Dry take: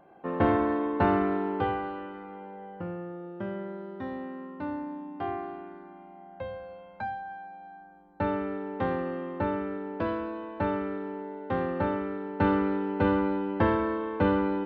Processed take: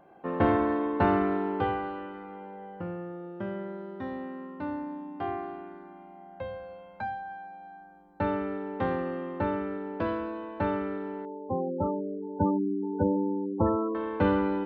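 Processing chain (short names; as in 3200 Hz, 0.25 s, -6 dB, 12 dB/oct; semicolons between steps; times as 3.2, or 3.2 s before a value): 11.25–13.95 spectral gate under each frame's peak -10 dB strong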